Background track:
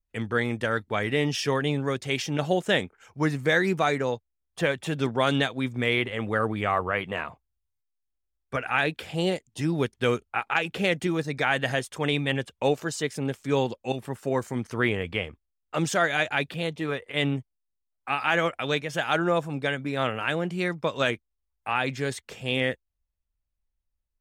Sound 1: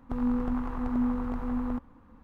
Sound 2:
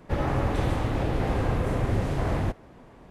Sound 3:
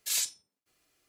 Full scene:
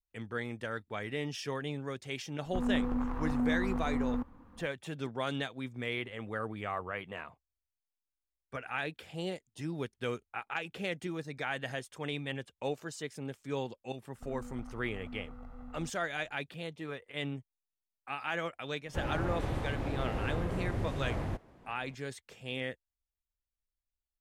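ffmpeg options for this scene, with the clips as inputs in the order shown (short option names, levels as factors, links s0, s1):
-filter_complex "[1:a]asplit=2[s0][s1];[0:a]volume=0.266[s2];[s0]asoftclip=type=tanh:threshold=0.0631[s3];[s1]aecho=1:1:1.5:0.65[s4];[s3]atrim=end=2.23,asetpts=PTS-STARTPTS,volume=0.891,afade=t=in:d=0.004:c=hsin,afade=t=out:st=2.226:d=0.004:c=hsin,adelay=2440[s5];[s4]atrim=end=2.23,asetpts=PTS-STARTPTS,volume=0.141,afade=t=in:d=0.004:c=hsin,afade=t=out:st=2.226:d=0.004:c=hsin,adelay=14110[s6];[2:a]atrim=end=3.1,asetpts=PTS-STARTPTS,volume=0.355,afade=t=in:d=0.004:c=hsin,afade=t=out:st=3.096:d=0.004:c=hsin,adelay=18850[s7];[s2][s5][s6][s7]amix=inputs=4:normalize=0"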